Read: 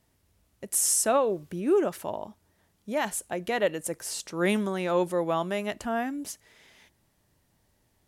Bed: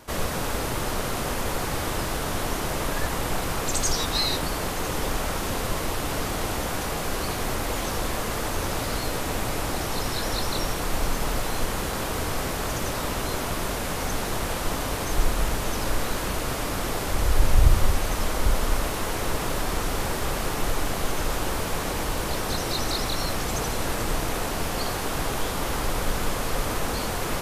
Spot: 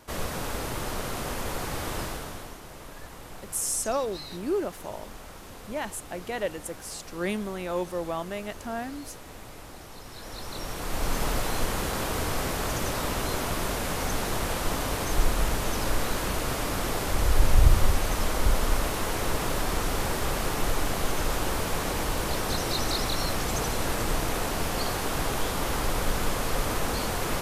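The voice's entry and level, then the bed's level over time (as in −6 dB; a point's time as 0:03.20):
2.80 s, −4.5 dB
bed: 0:02.03 −4.5 dB
0:02.60 −16.5 dB
0:10.04 −16.5 dB
0:11.17 −1 dB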